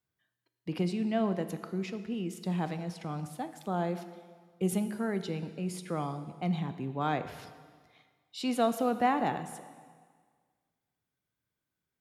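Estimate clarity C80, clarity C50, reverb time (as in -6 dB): 12.5 dB, 11.5 dB, 1.7 s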